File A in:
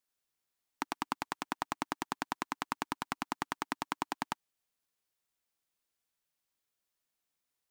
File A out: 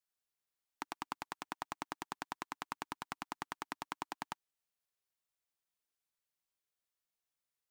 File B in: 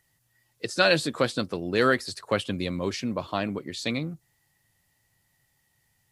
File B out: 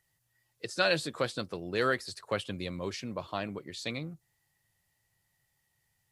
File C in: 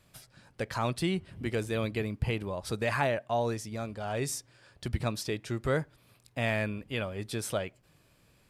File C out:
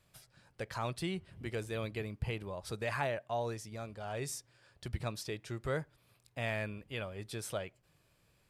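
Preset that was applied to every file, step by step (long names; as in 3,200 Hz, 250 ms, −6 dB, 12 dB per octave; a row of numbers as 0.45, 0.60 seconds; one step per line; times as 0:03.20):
parametric band 250 Hz −5 dB 0.63 octaves
level −6 dB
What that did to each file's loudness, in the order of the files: −6.5, −6.5, −6.5 LU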